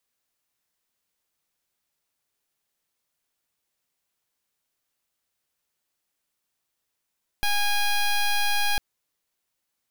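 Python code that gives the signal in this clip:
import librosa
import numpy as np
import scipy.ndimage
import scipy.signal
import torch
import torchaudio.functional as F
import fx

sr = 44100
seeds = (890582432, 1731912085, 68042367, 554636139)

y = fx.pulse(sr, length_s=1.35, hz=820.0, level_db=-22.0, duty_pct=11)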